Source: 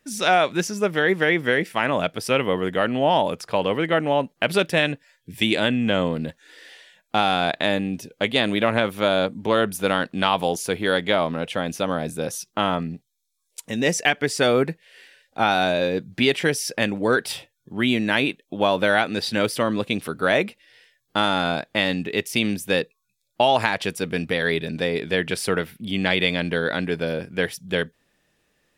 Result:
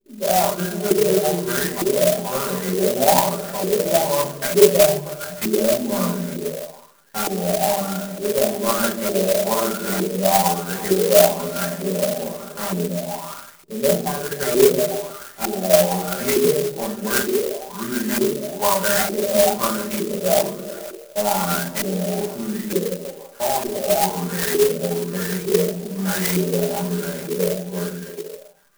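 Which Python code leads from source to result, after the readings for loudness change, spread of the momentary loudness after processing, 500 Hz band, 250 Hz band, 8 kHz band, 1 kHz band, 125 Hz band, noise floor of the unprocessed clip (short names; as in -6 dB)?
+2.0 dB, 12 LU, +4.0 dB, +0.5 dB, +10.0 dB, +0.5 dB, +2.0 dB, -72 dBFS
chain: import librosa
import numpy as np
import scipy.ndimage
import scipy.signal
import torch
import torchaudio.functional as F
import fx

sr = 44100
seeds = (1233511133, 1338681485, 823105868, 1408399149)

p1 = x + 0.98 * np.pad(x, (int(5.0 * sr / 1000.0), 0))[:len(x)]
p2 = p1 + fx.echo_stepped(p1, sr, ms=158, hz=260.0, octaves=0.7, feedback_pct=70, wet_db=-3, dry=0)
p3 = fx.room_shoebox(p2, sr, seeds[0], volume_m3=440.0, walls='furnished', distance_m=4.9)
p4 = fx.filter_lfo_lowpass(p3, sr, shape='saw_up', hz=1.1, low_hz=350.0, high_hz=2400.0, q=6.2)
p5 = fx.air_absorb(p4, sr, metres=250.0)
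p6 = fx.clock_jitter(p5, sr, seeds[1], jitter_ms=0.11)
y = p6 * librosa.db_to_amplitude(-16.0)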